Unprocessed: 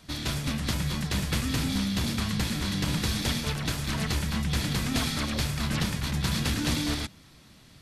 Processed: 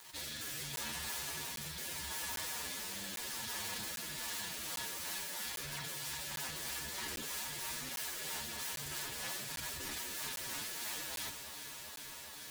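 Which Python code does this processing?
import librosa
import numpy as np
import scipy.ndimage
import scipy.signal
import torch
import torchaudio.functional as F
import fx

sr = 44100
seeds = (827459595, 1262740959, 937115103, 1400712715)

p1 = fx.tone_stack(x, sr, knobs='5-5-5')
p2 = fx.hum_notches(p1, sr, base_hz=60, count=9)
p3 = (np.mod(10.0 ** (38.0 / 20.0) * p2 + 1.0, 2.0) - 1.0) / 10.0 ** (38.0 / 20.0)
p4 = fx.rider(p3, sr, range_db=10, speed_s=2.0)
p5 = fx.rotary_switch(p4, sr, hz=1.2, then_hz=5.0, switch_at_s=2.21)
p6 = fx.quant_dither(p5, sr, seeds[0], bits=10, dither='none')
p7 = fx.low_shelf(p6, sr, hz=240.0, db=-9.5)
p8 = fx.small_body(p7, sr, hz=(930.0, 1700.0), ring_ms=45, db=10)
p9 = p8 + fx.echo_alternate(p8, sr, ms=125, hz=1200.0, feedback_pct=89, wet_db=-14, dry=0)
p10 = fx.stretch_vocoder(p9, sr, factor=1.6)
p11 = fx.buffer_crackle(p10, sr, first_s=0.76, period_s=0.8, block=512, kind='zero')
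p12 = fx.env_flatten(p11, sr, amount_pct=50)
y = p12 * librosa.db_to_amplitude(3.5)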